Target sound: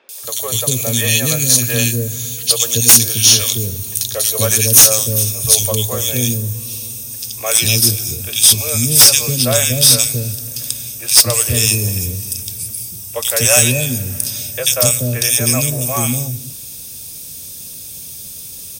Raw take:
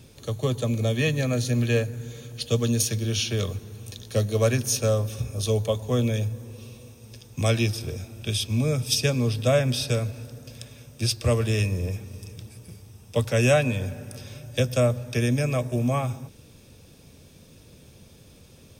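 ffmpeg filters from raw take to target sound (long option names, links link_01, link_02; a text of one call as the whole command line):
ffmpeg -i in.wav -filter_complex "[0:a]highshelf=frequency=6200:gain=9.5,acrossover=split=440|2000[link_01][link_02][link_03];[link_03]adelay=90[link_04];[link_01]adelay=240[link_05];[link_05][link_02][link_04]amix=inputs=3:normalize=0,crystalizer=i=6:c=0,acontrast=43,volume=-1dB" out.wav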